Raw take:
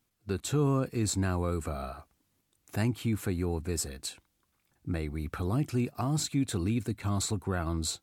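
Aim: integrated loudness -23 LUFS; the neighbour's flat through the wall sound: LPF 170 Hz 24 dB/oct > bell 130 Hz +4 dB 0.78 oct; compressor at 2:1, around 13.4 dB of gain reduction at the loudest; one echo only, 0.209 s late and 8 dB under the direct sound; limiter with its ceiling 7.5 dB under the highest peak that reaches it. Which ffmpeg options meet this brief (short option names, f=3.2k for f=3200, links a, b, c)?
-af "acompressor=threshold=-50dB:ratio=2,alimiter=level_in=11.5dB:limit=-24dB:level=0:latency=1,volume=-11.5dB,lowpass=f=170:w=0.5412,lowpass=f=170:w=1.3066,equalizer=f=130:t=o:w=0.78:g=4,aecho=1:1:209:0.398,volume=24dB"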